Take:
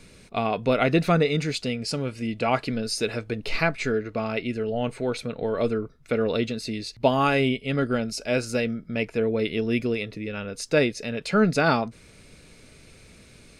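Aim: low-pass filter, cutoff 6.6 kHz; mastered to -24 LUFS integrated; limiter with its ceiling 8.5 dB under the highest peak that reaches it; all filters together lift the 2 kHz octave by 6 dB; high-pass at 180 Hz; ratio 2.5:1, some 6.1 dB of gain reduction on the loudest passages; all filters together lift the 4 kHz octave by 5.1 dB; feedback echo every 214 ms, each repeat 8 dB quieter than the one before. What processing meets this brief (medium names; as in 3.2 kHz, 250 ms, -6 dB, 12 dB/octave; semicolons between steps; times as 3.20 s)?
high-pass 180 Hz; low-pass 6.6 kHz; peaking EQ 2 kHz +6.5 dB; peaking EQ 4 kHz +5 dB; compression 2.5:1, threshold -23 dBFS; peak limiter -16 dBFS; feedback delay 214 ms, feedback 40%, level -8 dB; trim +4 dB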